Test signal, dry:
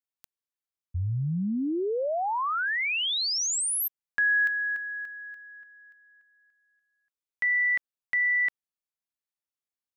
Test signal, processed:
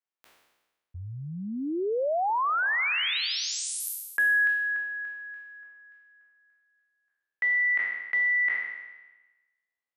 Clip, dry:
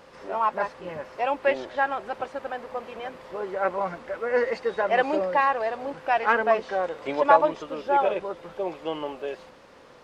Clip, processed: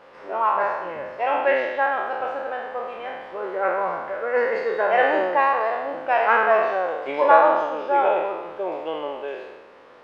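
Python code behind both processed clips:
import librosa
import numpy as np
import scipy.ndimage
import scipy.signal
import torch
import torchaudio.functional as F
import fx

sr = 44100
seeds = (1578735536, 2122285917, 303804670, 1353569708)

y = fx.spec_trails(x, sr, decay_s=1.17)
y = fx.bass_treble(y, sr, bass_db=-11, treble_db=-14)
y = y * 10.0 ** (1.0 / 20.0)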